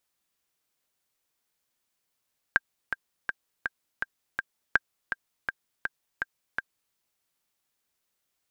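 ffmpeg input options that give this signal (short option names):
-f lavfi -i "aevalsrc='pow(10,(-6.5-8.5*gte(mod(t,6*60/164),60/164))/20)*sin(2*PI*1590*mod(t,60/164))*exp(-6.91*mod(t,60/164)/0.03)':d=4.39:s=44100"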